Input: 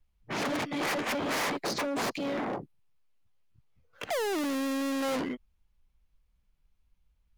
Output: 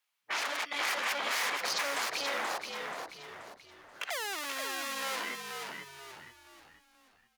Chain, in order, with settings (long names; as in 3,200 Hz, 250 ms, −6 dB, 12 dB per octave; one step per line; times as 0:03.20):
high-pass filter 1,100 Hz 12 dB per octave
brickwall limiter −30 dBFS, peak gain reduction 7.5 dB
echo with shifted repeats 481 ms, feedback 40%, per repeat −64 Hz, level −5 dB
level +6.5 dB